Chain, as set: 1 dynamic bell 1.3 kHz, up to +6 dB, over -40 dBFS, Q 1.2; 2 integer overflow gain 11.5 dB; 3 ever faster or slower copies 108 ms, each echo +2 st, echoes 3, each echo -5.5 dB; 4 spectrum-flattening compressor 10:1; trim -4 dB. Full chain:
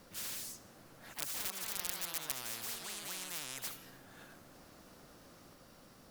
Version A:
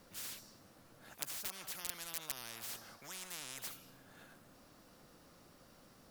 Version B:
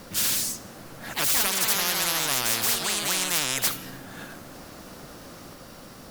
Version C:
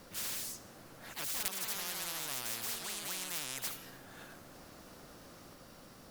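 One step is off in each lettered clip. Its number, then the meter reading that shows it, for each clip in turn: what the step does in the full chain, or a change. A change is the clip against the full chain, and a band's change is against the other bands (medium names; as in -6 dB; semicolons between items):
3, loudness change -4.0 LU; 2, distortion -4 dB; 1, loudness change +2.5 LU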